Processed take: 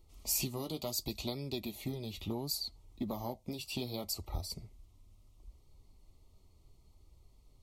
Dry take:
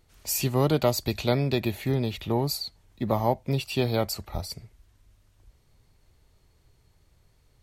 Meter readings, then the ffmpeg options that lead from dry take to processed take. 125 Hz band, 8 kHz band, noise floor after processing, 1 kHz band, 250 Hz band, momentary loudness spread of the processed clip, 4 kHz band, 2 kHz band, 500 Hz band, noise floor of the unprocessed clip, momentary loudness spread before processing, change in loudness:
-15.0 dB, -4.5 dB, -64 dBFS, -16.0 dB, -11.5 dB, 9 LU, -6.5 dB, -13.5 dB, -16.0 dB, -63 dBFS, 12 LU, -11.0 dB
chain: -filter_complex "[0:a]asuperstop=centerf=1600:order=8:qfactor=2.7,lowshelf=f=720:t=q:w=1.5:g=6.5,acrossover=split=3300[a][b];[a]acompressor=threshold=-26dB:ratio=6[c];[c][b]amix=inputs=2:normalize=0,equalizer=f=125:t=o:w=1:g=-8,equalizer=f=500:t=o:w=1:g=-10,equalizer=f=1k:t=o:w=1:g=4,equalizer=f=2k:t=o:w=1:g=-5,flanger=delay=2.1:depth=8.6:regen=-48:speed=0.7:shape=sinusoidal"

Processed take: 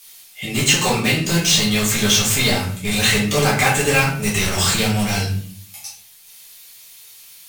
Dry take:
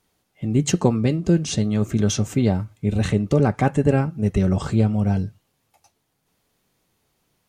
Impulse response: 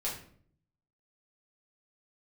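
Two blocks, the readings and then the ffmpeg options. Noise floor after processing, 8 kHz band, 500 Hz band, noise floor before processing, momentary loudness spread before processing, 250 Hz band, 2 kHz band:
-45 dBFS, +13.5 dB, +1.0 dB, -72 dBFS, 4 LU, -1.5 dB, +16.0 dB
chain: -filter_complex "[0:a]equalizer=f=2.8k:t=o:w=1.5:g=5,acrossover=split=2900[a][b];[b]acompressor=threshold=-39dB:ratio=4:attack=1:release=60[c];[a][c]amix=inputs=2:normalize=0,tiltshelf=f=830:g=-7.5,crystalizer=i=6:c=0,asplit=2[d][e];[e]aeval=exprs='(mod(7.5*val(0)+1,2)-1)/7.5':c=same,volume=-4dB[f];[d][f]amix=inputs=2:normalize=0[g];[1:a]atrim=start_sample=2205,asetrate=42777,aresample=44100[h];[g][h]afir=irnorm=-1:irlink=0,volume=-2dB"

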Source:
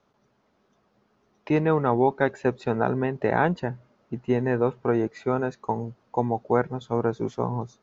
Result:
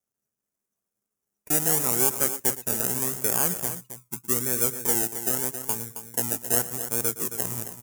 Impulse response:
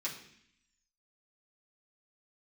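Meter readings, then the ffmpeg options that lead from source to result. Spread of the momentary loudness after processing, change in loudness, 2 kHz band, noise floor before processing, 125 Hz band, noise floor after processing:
8 LU, +2.0 dB, -4.5 dB, -68 dBFS, -8.0 dB, under -85 dBFS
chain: -filter_complex "[0:a]afftdn=nr=16:nf=-35,aresample=22050,aresample=44100,acrossover=split=960[a][b];[a]acrusher=samples=32:mix=1:aa=0.000001:lfo=1:lforange=19.2:lforate=0.82[c];[c][b]amix=inputs=2:normalize=0,aecho=1:1:115|269:0.15|0.299,aexciter=amount=10.3:drive=6.6:freq=6.1k,volume=-8.5dB"

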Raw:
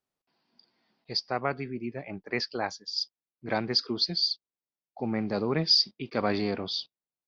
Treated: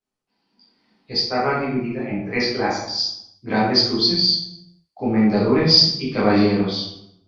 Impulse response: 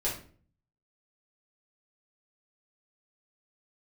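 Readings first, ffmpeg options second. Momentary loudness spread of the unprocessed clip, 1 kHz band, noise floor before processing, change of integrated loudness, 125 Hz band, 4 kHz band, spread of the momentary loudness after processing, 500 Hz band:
14 LU, +10.0 dB, under -85 dBFS, +10.0 dB, +11.5 dB, +9.5 dB, 13 LU, +10.0 dB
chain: -filter_complex "[0:a]dynaudnorm=f=130:g=11:m=6.5dB[a];[1:a]atrim=start_sample=2205,afade=t=out:st=0.42:d=0.01,atrim=end_sample=18963,asetrate=22491,aresample=44100[b];[a][b]afir=irnorm=-1:irlink=0,volume=-7.5dB"

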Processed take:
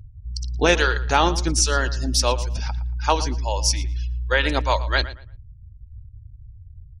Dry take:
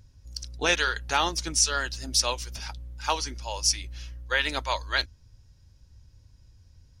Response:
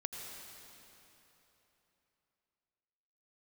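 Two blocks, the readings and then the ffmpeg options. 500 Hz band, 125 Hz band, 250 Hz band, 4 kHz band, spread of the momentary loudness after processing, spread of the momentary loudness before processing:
+10.0 dB, +13.5 dB, +11.5 dB, +2.0 dB, 9 LU, 16 LU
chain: -filter_complex "[0:a]afftfilt=real='re*gte(hypot(re,im),0.00708)':imag='im*gte(hypot(re,im),0.00708)':win_size=1024:overlap=0.75,tiltshelf=f=910:g=5.5,asplit=2[a][b];[b]adelay=115,lowpass=f=3.4k:p=1,volume=-15dB,asplit=2[c][d];[d]adelay=115,lowpass=f=3.4k:p=1,volume=0.25,asplit=2[e][f];[f]adelay=115,lowpass=f=3.4k:p=1,volume=0.25[g];[a][c][e][g]amix=inputs=4:normalize=0,volume=7dB"

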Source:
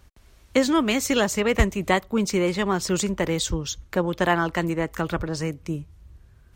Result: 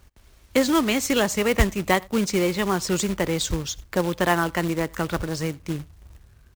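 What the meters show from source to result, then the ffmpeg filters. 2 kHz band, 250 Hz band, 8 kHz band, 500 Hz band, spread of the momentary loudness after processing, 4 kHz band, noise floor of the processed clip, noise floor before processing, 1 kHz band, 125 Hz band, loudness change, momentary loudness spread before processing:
+0.5 dB, 0.0 dB, +1.0 dB, 0.0 dB, 8 LU, +1.0 dB, -55 dBFS, -55 dBFS, +0.5 dB, 0.0 dB, +0.5 dB, 8 LU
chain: -filter_complex "[0:a]asplit=2[a][b];[b]adelay=87.46,volume=-26dB,highshelf=f=4k:g=-1.97[c];[a][c]amix=inputs=2:normalize=0,acrusher=bits=3:mode=log:mix=0:aa=0.000001"

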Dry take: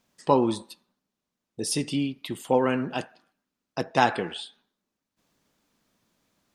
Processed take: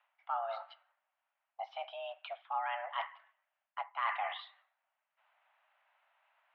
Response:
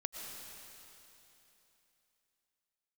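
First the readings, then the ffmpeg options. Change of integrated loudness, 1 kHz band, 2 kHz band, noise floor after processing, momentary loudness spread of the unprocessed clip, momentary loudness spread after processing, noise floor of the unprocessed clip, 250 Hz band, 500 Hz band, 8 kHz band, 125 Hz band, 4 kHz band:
-13.0 dB, -8.5 dB, -9.0 dB, under -85 dBFS, 15 LU, 12 LU, -85 dBFS, under -40 dB, -17.5 dB, under -40 dB, under -40 dB, -13.0 dB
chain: -af "areverse,acompressor=threshold=-33dB:ratio=16,areverse,highpass=f=370:t=q:w=0.5412,highpass=f=370:t=q:w=1.307,lowpass=f=2.6k:t=q:w=0.5176,lowpass=f=2.6k:t=q:w=0.7071,lowpass=f=2.6k:t=q:w=1.932,afreqshift=340,volume=3dB"

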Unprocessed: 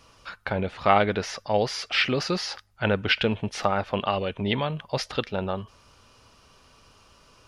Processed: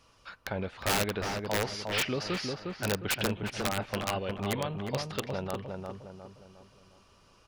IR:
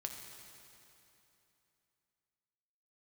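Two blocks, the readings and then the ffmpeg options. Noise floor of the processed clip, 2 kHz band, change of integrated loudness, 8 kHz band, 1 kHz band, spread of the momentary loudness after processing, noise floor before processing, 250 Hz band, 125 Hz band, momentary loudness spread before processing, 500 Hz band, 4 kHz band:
-62 dBFS, -6.0 dB, -6.5 dB, +3.0 dB, -9.0 dB, 13 LU, -58 dBFS, -5.5 dB, -4.5 dB, 9 LU, -7.0 dB, -6.0 dB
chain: -filter_complex "[0:a]aeval=exprs='(mod(5.01*val(0)+1,2)-1)/5.01':c=same,asplit=2[a][b];[b]adelay=357,lowpass=f=1.5k:p=1,volume=-3.5dB,asplit=2[c][d];[d]adelay=357,lowpass=f=1.5k:p=1,volume=0.44,asplit=2[e][f];[f]adelay=357,lowpass=f=1.5k:p=1,volume=0.44,asplit=2[g][h];[h]adelay=357,lowpass=f=1.5k:p=1,volume=0.44,asplit=2[i][j];[j]adelay=357,lowpass=f=1.5k:p=1,volume=0.44,asplit=2[k][l];[l]adelay=357,lowpass=f=1.5k:p=1,volume=0.44[m];[a][c][e][g][i][k][m]amix=inputs=7:normalize=0,volume=-7dB"

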